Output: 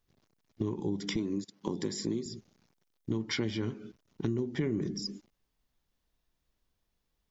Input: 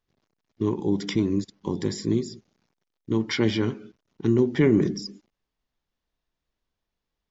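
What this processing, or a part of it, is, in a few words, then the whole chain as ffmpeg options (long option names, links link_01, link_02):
ASMR close-microphone chain: -filter_complex "[0:a]asettb=1/sr,asplit=3[link_01][link_02][link_03];[link_01]atrim=end=1.164[link_04];[link_02]atrim=start=1.16:end=2.26,asetpts=PTS-STARTPTS,afade=type=in:duration=0.004:curve=qsin,afade=type=out:start_time=1.096:duration=0.004:curve=qsin,highpass=180[link_05];[link_03]atrim=start=2.256[link_06];[link_04][link_05]acrossfade=duration=0.004:curve1=hsin:curve2=qsin[link_07];[link_07][link_06]acrossfade=duration=0.004:curve1=qsin:curve2=hsin,lowshelf=frequency=230:gain=5,acompressor=threshold=-31dB:ratio=4,highshelf=frequency=6200:gain=7.5"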